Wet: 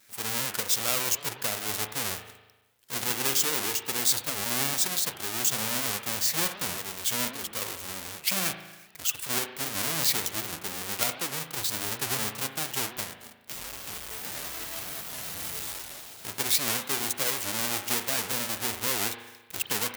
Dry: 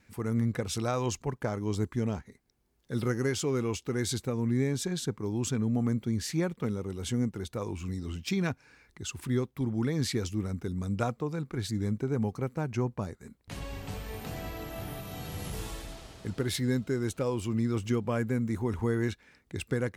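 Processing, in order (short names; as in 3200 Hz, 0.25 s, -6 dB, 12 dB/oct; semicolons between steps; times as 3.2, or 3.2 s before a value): half-waves squared off; tilt +4.5 dB/oct; on a send at -7 dB: reverb RT60 1.1 s, pre-delay 37 ms; on the sum: record warp 78 rpm, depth 250 cents; gain -4.5 dB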